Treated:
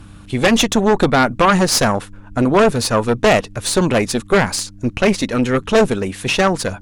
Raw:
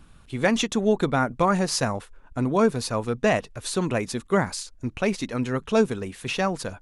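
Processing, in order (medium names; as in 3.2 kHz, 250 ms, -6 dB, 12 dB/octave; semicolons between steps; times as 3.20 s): Chebyshev shaper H 5 -6 dB, 6 -8 dB, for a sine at -6.5 dBFS; mains buzz 100 Hz, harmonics 3, -42 dBFS -4 dB/octave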